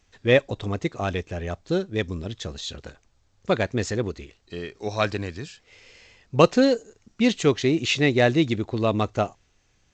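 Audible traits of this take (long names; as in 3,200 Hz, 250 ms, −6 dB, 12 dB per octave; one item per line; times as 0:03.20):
G.722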